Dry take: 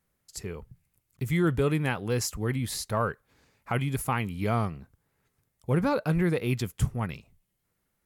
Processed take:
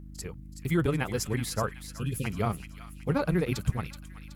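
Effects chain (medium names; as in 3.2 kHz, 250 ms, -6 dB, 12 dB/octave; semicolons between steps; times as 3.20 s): hum 60 Hz, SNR 13 dB; spectral selection erased 3.62–4.16 s, 550–2400 Hz; granular stretch 0.54×, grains 66 ms; feedback echo behind a high-pass 375 ms, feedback 44%, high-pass 1.7 kHz, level -9 dB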